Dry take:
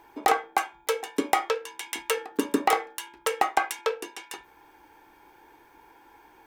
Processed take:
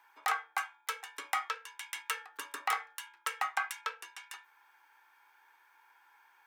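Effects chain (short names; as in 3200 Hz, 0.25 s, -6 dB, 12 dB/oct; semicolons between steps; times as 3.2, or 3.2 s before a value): resonant high-pass 1300 Hz, resonance Q 1.8; gain -8.5 dB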